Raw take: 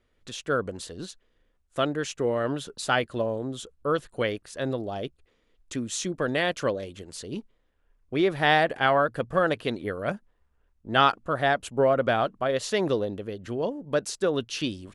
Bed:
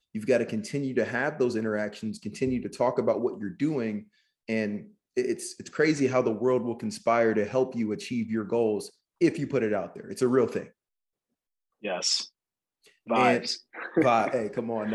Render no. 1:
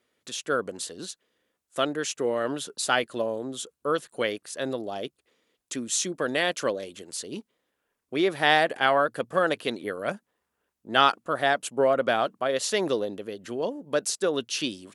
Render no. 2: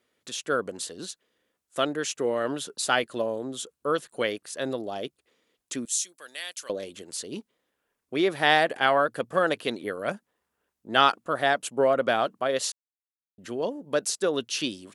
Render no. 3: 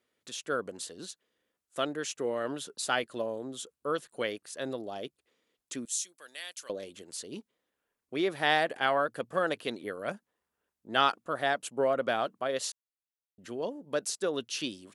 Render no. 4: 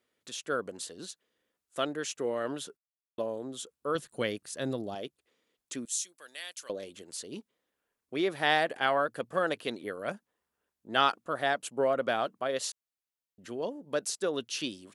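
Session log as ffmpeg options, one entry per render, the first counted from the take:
-af "highpass=210,aemphasis=mode=production:type=cd"
-filter_complex "[0:a]asettb=1/sr,asplit=3[a][b][c];[a]atrim=end=5.854[d];[b]atrim=start=5.85:end=6.7,asetpts=PTS-STARTPTS,afade=t=in:d=0.004:c=qsin,afade=t=out:st=0.846:d=0.004:c=qsin,aderivative[e];[c]atrim=start=6.696[f];[d][e]acrossfade=d=0.004:c1=hsin:c2=qsin[g];[g][f]acrossfade=d=0.004:c1=qsin:c2=hsin,asplit=3[h][i][j];[h]atrim=end=12.72,asetpts=PTS-STARTPTS,afade=t=out:st=12.716:d=0.004:c=hsin[k];[i]atrim=start=12.72:end=13.38,asetpts=PTS-STARTPTS,volume=0[l];[j]atrim=start=13.38,asetpts=PTS-STARTPTS,afade=t=in:d=0.004:c=hsin[m];[k][l][m]concat=n=3:v=0:a=1"
-af "volume=-5.5dB"
-filter_complex "[0:a]asettb=1/sr,asplit=3[a][b][c];[a]atrim=end=3.954[d];[b]atrim=start=3.95:end=4.95,asetpts=PTS-STARTPTS,afade=t=in:d=0.004:c=qsin,afade=t=out:st=0.996:d=0.004:c=qsin,bass=f=250:g=10,treble=f=4k:g=3[e];[c]atrim=start=4.946[f];[d][e]acrossfade=d=0.004:c1=hsin:c2=qsin[g];[g][f]acrossfade=d=0.004:c1=qsin:c2=hsin,asplit=3[h][i][j];[h]atrim=end=2.77,asetpts=PTS-STARTPTS,afade=t=out:st=2.766:d=0.004:c=hsin[k];[i]atrim=start=2.77:end=3.18,asetpts=PTS-STARTPTS,volume=0[l];[j]atrim=start=3.18,asetpts=PTS-STARTPTS,afade=t=in:d=0.004:c=hsin[m];[k][l][m]concat=n=3:v=0:a=1"

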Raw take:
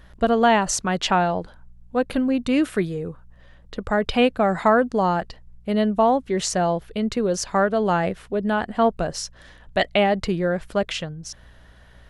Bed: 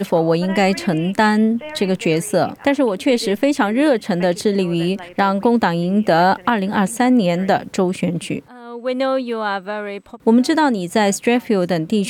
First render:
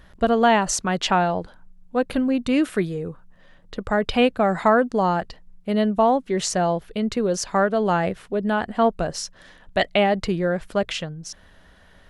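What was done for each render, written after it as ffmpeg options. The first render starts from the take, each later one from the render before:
-af "bandreject=f=60:t=h:w=4,bandreject=f=120:t=h:w=4"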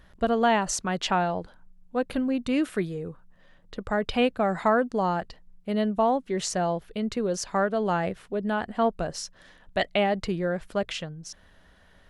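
-af "volume=-5dB"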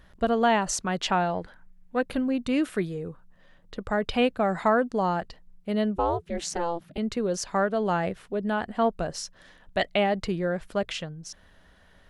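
-filter_complex "[0:a]asettb=1/sr,asplit=3[a][b][c];[a]atrim=end=1.344[d];[b]atrim=start=1.34:end=2.01,asetpts=PTS-STARTPTS,afade=t=in:d=0.004:c=qsin,afade=t=out:st=0.666:d=0.004:c=qsin,equalizer=f=1.9k:w=2.1:g=10.5[e];[c]atrim=start=2.006[f];[d][e]acrossfade=d=0.004:c1=hsin:c2=qsin[g];[g][f]acrossfade=d=0.004:c1=qsin:c2=hsin,asettb=1/sr,asplit=3[h][i][j];[h]atrim=end=5.964[k];[i]atrim=start=5.96:end=6.98,asetpts=PTS-STARTPTS,afade=t=in:d=0.004:c=qsin,afade=t=out:st=1.016:d=0.004:c=qsin,aeval=exprs='val(0)*sin(2*PI*170*n/s)':c=same[l];[j]atrim=start=6.976[m];[k][l]acrossfade=d=0.004:c1=hsin:c2=qsin[n];[n][m]acrossfade=d=0.004:c1=qsin:c2=hsin"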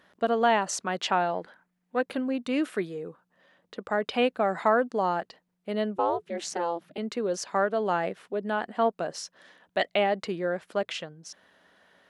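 -af "highpass=270,highshelf=f=5.7k:g=-5"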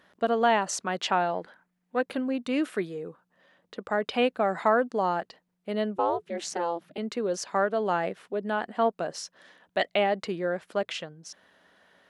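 -af anull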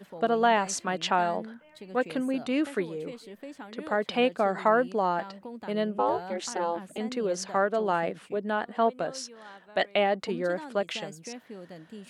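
-filter_complex "[1:a]volume=-26.5dB[a];[0:a][a]amix=inputs=2:normalize=0"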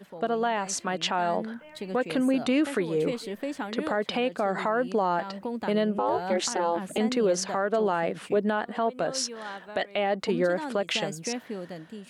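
-af "dynaudnorm=f=760:g=3:m=11.5dB,alimiter=limit=-16dB:level=0:latency=1:release=191"

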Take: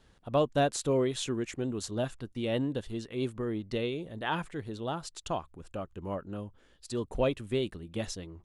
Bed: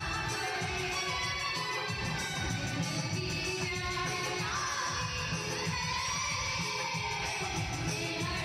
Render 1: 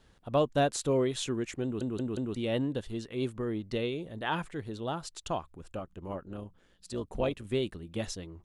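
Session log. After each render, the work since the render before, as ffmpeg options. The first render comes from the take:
-filter_complex "[0:a]asettb=1/sr,asplit=3[a][b][c];[a]atrim=end=5.794[d];[b]atrim=start=5.79:end=7.45,asetpts=PTS-STARTPTS,afade=t=in:d=0.004:c=qsin,afade=t=out:st=1.656:d=0.004:c=qsin,tremolo=f=180:d=0.571[e];[c]atrim=start=7.446[f];[d][e]acrossfade=d=0.004:c1=hsin:c2=qsin[g];[g][f]acrossfade=d=0.004:c1=qsin:c2=hsin,asplit=5[h][i][j][k][l];[h]atrim=end=1.812[m];[i]atrim=start=1.628:end=1.812[n];[j]atrim=start=1.628:end=1.812[o];[k]atrim=start=1.628:end=1.812[p];[l]atrim=start=2.348[q];[m][n]acrossfade=d=0.004:c1=hsin:c2=hsin[r];[r][o]acrossfade=d=0.004:c1=hsin:c2=hsin[s];[s][p]acrossfade=d=0.004:c1=hsin:c2=hsin[t];[t][q]acrossfade=d=0.004:c1=hsin:c2=hsin"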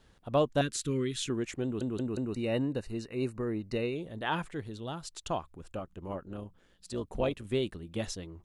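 -filter_complex "[0:a]asettb=1/sr,asplit=3[a][b][c];[a]atrim=end=0.614[d];[b]atrim=start=0.61:end=1.3,asetpts=PTS-STARTPTS,afade=t=in:d=0.004:c=qsin,afade=t=out:st=0.686:d=0.004:c=qsin,asuperstop=centerf=710:order=4:qfactor=0.66[e];[c]atrim=start=1.296[f];[d][e]acrossfade=d=0.004:c1=hsin:c2=qsin[g];[g][f]acrossfade=d=0.004:c1=qsin:c2=hsin,asettb=1/sr,asplit=3[h][i][j];[h]atrim=end=2.064[k];[i]atrim=start=2.06:end=3.96,asetpts=PTS-STARTPTS,afade=t=in:d=0.004:c=qsin,afade=t=out:st=1.896:d=0.004:c=qsin,asuperstop=centerf=3300:order=12:qfactor=4.4[l];[j]atrim=start=3.956[m];[k][l]acrossfade=d=0.004:c1=hsin:c2=qsin[n];[n][m]acrossfade=d=0.004:c1=qsin:c2=hsin,asettb=1/sr,asplit=3[o][p][q];[o]atrim=end=4.674[r];[p]atrim=start=4.67:end=5.11,asetpts=PTS-STARTPTS,afade=t=in:d=0.004:c=qsin,afade=t=out:st=0.436:d=0.004:c=qsin,equalizer=f=720:w=0.4:g=-6[s];[q]atrim=start=5.106[t];[r][s]acrossfade=d=0.004:c1=hsin:c2=qsin[u];[u][t]acrossfade=d=0.004:c1=qsin:c2=hsin"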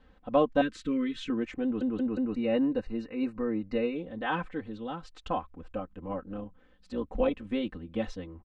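-af "lowpass=2.4k,aecho=1:1:3.9:0.99"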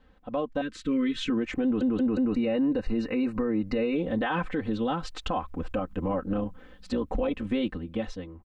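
-af "dynaudnorm=f=210:g=11:m=13dB,alimiter=limit=-19.5dB:level=0:latency=1:release=118"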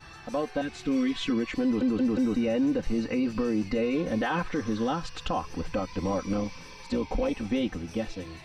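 -filter_complex "[1:a]volume=-13dB[a];[0:a][a]amix=inputs=2:normalize=0"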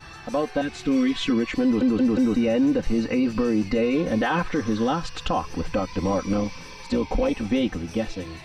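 -af "volume=5dB"

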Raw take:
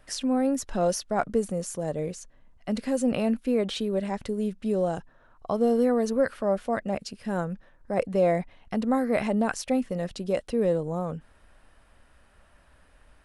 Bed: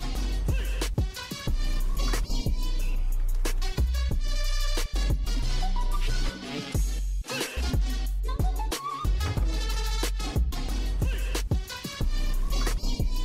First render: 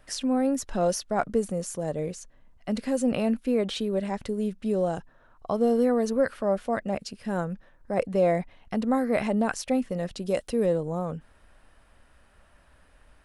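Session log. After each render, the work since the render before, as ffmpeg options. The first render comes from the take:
-filter_complex "[0:a]asettb=1/sr,asplit=3[a][b][c];[a]atrim=end=10.224[d];[b]atrim=start=10.22:end=10.66,asetpts=PTS-STARTPTS,afade=t=in:d=0.004:c=qsin,afade=t=out:st=0.436:d=0.004:c=qsin,highshelf=f=5.9k:g=8.5[e];[c]atrim=start=10.656[f];[d][e]acrossfade=d=0.004:c1=hsin:c2=qsin[g];[g][f]acrossfade=d=0.004:c1=qsin:c2=hsin"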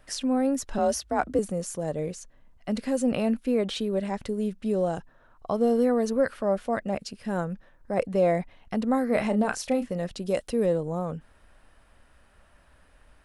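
-filter_complex "[0:a]asettb=1/sr,asplit=3[a][b][c];[a]atrim=end=0.784[d];[b]atrim=start=0.78:end=1.39,asetpts=PTS-STARTPTS,afade=t=in:d=0.004:c=qsin,afade=t=out:st=0.606:d=0.004:c=qsin,afreqshift=43[e];[c]atrim=start=1.386[f];[d][e]acrossfade=d=0.004:c1=hsin:c2=qsin[g];[g][f]acrossfade=d=0.004:c1=qsin:c2=hsin,asettb=1/sr,asplit=3[h][i][j];[h]atrim=end=9.064[k];[i]atrim=start=9.06:end=9.93,asetpts=PTS-STARTPTS,afade=t=in:d=0.004:c=qsin,afade=t=out:st=0.866:d=0.004:c=qsin,asplit=2[l][m];[m]adelay=33,volume=-9dB[n];[l][n]amix=inputs=2:normalize=0,atrim=end_sample=38367[o];[j]atrim=start=9.926[p];[k][o]acrossfade=d=0.004:c1=hsin:c2=qsin[q];[q][p]acrossfade=d=0.004:c1=qsin:c2=hsin"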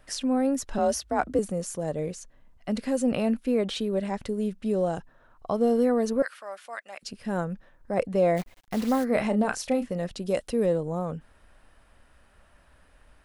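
-filter_complex "[0:a]asettb=1/sr,asplit=3[a][b][c];[a]atrim=end=6.224[d];[b]atrim=start=6.22:end=7.03,asetpts=PTS-STARTPTS,afade=t=in:d=0.004:c=qsin,afade=t=out:st=0.806:d=0.004:c=qsin,highpass=1.3k[e];[c]atrim=start=7.026[f];[d][e]acrossfade=d=0.004:c1=hsin:c2=qsin[g];[g][f]acrossfade=d=0.004:c1=qsin:c2=hsin,asplit=3[h][i][j];[h]afade=t=out:st=8.36:d=0.02[k];[i]acrusher=bits=7:dc=4:mix=0:aa=0.000001,afade=t=in:st=8.36:d=0.02,afade=t=out:st=9.03:d=0.02[l];[j]afade=t=in:st=9.03:d=0.02[m];[k][l][m]amix=inputs=3:normalize=0"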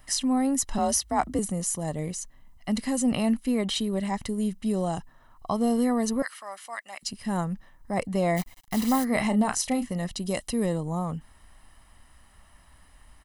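-af "highshelf=f=5.9k:g=11,aecho=1:1:1:0.56"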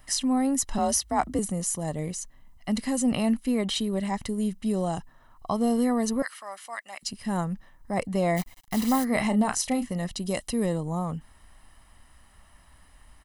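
-af anull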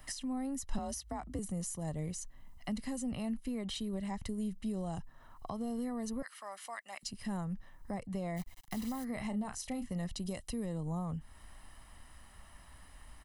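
-filter_complex "[0:a]alimiter=limit=-19dB:level=0:latency=1:release=190,acrossover=split=130[a][b];[b]acompressor=threshold=-44dB:ratio=2.5[c];[a][c]amix=inputs=2:normalize=0"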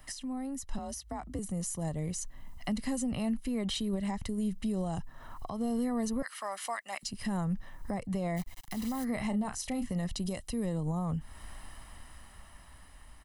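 -af "dynaudnorm=f=500:g=9:m=10.5dB,alimiter=level_in=1dB:limit=-24dB:level=0:latency=1:release=361,volume=-1dB"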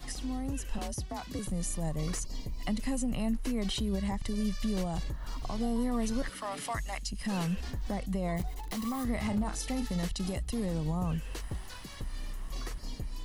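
-filter_complex "[1:a]volume=-11.5dB[a];[0:a][a]amix=inputs=2:normalize=0"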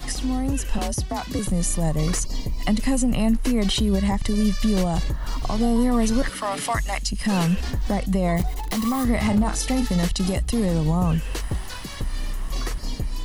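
-af "volume=11dB"

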